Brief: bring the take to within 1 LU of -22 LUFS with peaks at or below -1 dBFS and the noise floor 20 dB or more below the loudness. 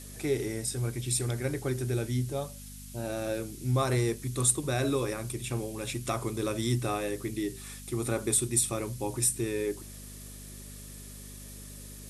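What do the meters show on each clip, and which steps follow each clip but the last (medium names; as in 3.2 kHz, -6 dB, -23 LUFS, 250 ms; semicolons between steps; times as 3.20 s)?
hum 50 Hz; highest harmonic 250 Hz; hum level -44 dBFS; noise floor -45 dBFS; noise floor target -51 dBFS; loudness -30.5 LUFS; peak level -10.0 dBFS; loudness target -22.0 LUFS
-> de-hum 50 Hz, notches 5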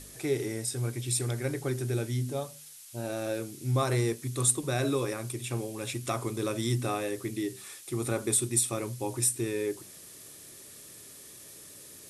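hum not found; noise floor -49 dBFS; noise floor target -51 dBFS
-> noise print and reduce 6 dB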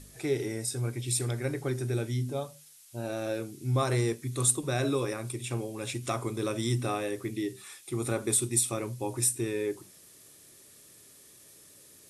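noise floor -55 dBFS; loudness -30.5 LUFS; peak level -10.0 dBFS; loudness target -22.0 LUFS
-> trim +8.5 dB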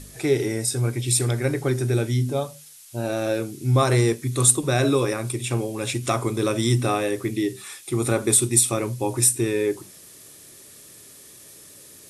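loudness -22.0 LUFS; peak level -1.5 dBFS; noise floor -47 dBFS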